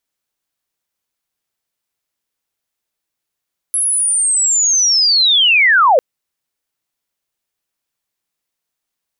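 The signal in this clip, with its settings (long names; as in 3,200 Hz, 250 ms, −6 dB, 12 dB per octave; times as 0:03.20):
glide linear 11,000 Hz → 470 Hz −13 dBFS → −6.5 dBFS 2.25 s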